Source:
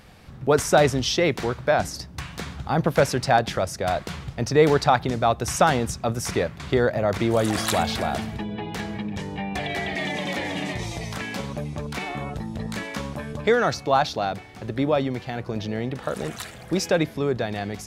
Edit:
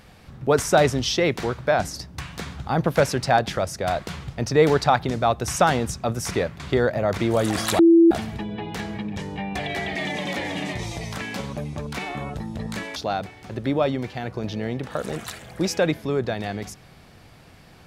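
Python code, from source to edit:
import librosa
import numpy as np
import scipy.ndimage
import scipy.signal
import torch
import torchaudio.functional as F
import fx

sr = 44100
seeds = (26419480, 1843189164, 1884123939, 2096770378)

y = fx.edit(x, sr, fx.bleep(start_s=7.79, length_s=0.32, hz=334.0, db=-9.5),
    fx.cut(start_s=12.96, length_s=1.12), tone=tone)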